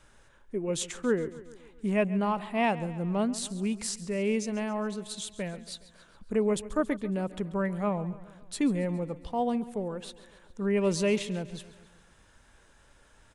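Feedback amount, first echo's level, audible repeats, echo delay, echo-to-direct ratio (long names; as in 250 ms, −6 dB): 57%, −17.0 dB, 4, 138 ms, −15.5 dB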